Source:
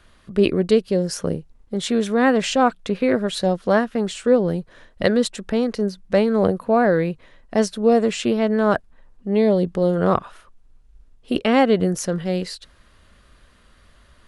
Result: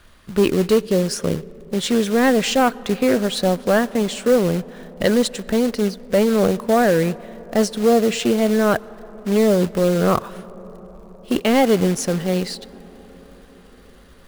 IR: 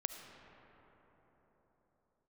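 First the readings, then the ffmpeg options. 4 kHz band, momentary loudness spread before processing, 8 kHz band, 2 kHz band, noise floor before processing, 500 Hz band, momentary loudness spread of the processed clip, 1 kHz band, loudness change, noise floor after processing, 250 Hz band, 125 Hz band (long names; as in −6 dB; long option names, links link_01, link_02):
+3.5 dB, 9 LU, +5.0 dB, +1.5 dB, −54 dBFS, +1.5 dB, 10 LU, 0.0 dB, +1.5 dB, −46 dBFS, +1.5 dB, +2.0 dB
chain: -filter_complex "[0:a]acrusher=bits=3:mode=log:mix=0:aa=0.000001,asplit=2[link_01][link_02];[1:a]atrim=start_sample=2205,asetrate=31752,aresample=44100[link_03];[link_02][link_03]afir=irnorm=-1:irlink=0,volume=-17dB[link_04];[link_01][link_04]amix=inputs=2:normalize=0,acontrast=90,volume=-5.5dB"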